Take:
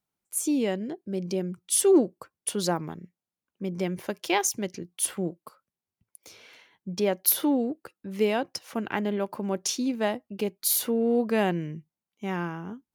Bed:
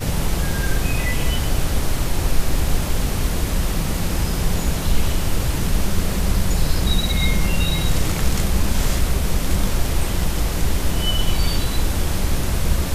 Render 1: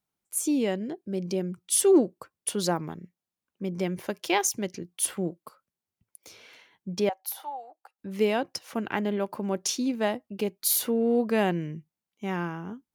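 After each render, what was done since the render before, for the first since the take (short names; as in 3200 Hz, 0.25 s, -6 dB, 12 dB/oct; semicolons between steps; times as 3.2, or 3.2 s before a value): 7.09–7.99 ladder high-pass 750 Hz, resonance 80%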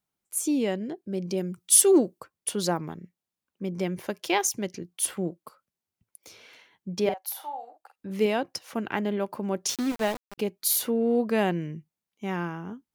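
1.37–2.2 high shelf 4300 Hz +8 dB; 7.01–8.26 doubler 47 ms -8 dB; 9.69–10.38 sample gate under -31 dBFS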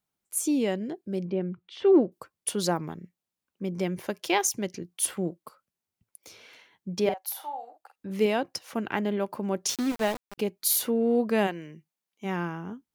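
1.25–2.12 Bessel low-pass 2100 Hz, order 6; 11.46–12.24 HPF 750 Hz -> 270 Hz 6 dB/oct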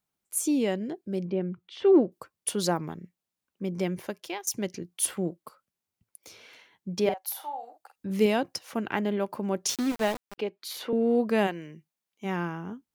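3.92–4.47 fade out, to -23 dB; 7.63–8.54 tone controls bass +5 dB, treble +4 dB; 10.35–10.93 three-band isolator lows -12 dB, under 300 Hz, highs -20 dB, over 4400 Hz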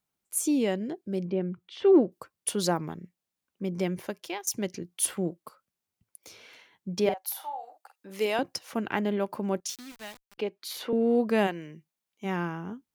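7.25–8.39 HPF 480 Hz; 9.6–10.38 passive tone stack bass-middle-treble 5-5-5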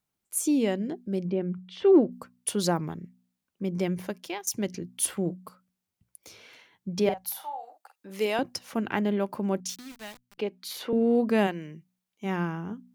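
tone controls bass +4 dB, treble 0 dB; de-hum 61.25 Hz, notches 4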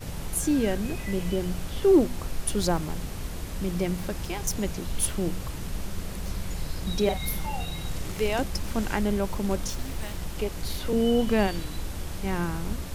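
add bed -13.5 dB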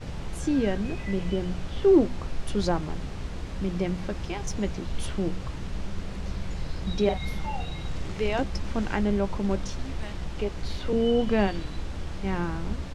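air absorption 110 m; doubler 15 ms -13 dB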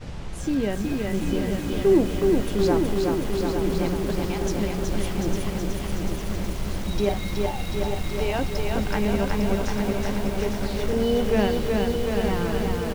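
on a send: feedback echo 0.853 s, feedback 58%, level -7 dB; on the sum: lo-fi delay 0.371 s, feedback 80%, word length 7-bit, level -3 dB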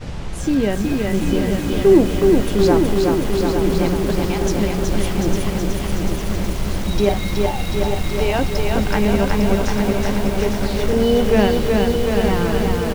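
gain +6.5 dB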